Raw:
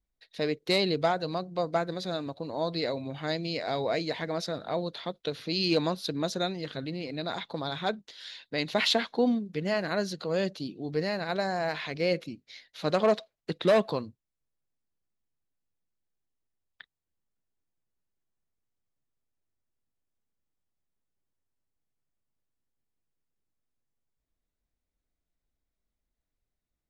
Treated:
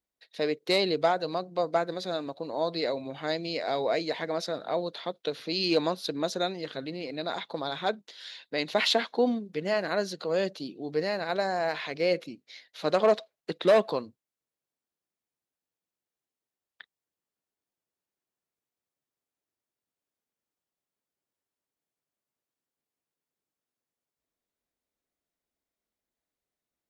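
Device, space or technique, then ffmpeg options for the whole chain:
filter by subtraction: -filter_complex "[0:a]asplit=2[link_01][link_02];[link_02]lowpass=460,volume=-1[link_03];[link_01][link_03]amix=inputs=2:normalize=0"

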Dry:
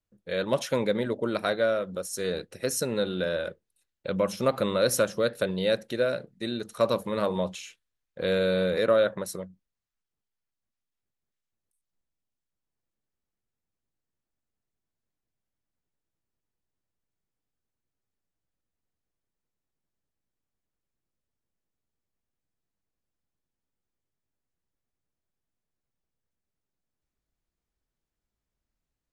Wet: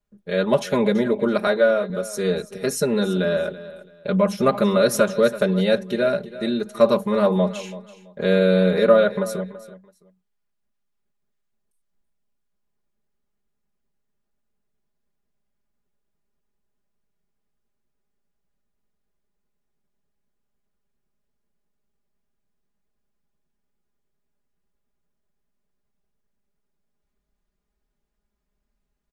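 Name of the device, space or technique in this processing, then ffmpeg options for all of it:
behind a face mask: -filter_complex "[0:a]asettb=1/sr,asplit=3[link_01][link_02][link_03];[link_01]atrim=end=1.474[link_04];[link_02]atrim=start=1.47:end=1.9,asetpts=PTS-STARTPTS,afade=type=in:duration=0.004:curve=qsin,afade=type=out:start_time=0.426:duration=0.004:curve=qsin,highpass=180[link_05];[link_03]atrim=start=1.896[link_06];[link_04][link_05]acrossfade=duration=0.004:curve1=hsin:curve2=qsin[link_07];[link_07][link_06]acrossfade=duration=0.004:curve1=qsin:curve2=hsin,highshelf=frequency=2200:gain=-7.5,aecho=1:1:4.9:0.96,aecho=1:1:332|664:0.158|0.038,volume=5.5dB"

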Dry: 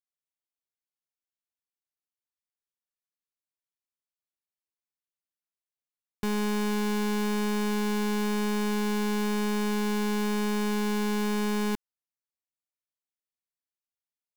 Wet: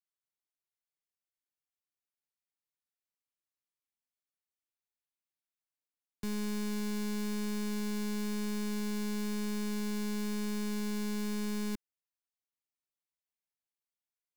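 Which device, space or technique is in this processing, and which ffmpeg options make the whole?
one-band saturation: -filter_complex "[0:a]acrossover=split=260|2700[link_01][link_02][link_03];[link_02]asoftclip=type=tanh:threshold=-38.5dB[link_04];[link_01][link_04][link_03]amix=inputs=3:normalize=0,equalizer=frequency=2200:width=3.8:gain=2.5,volume=-5dB"

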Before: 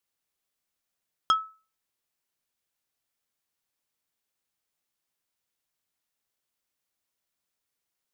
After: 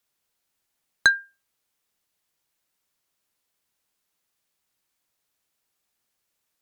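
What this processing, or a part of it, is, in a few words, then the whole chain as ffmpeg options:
nightcore: -af "asetrate=54243,aresample=44100,volume=7dB"

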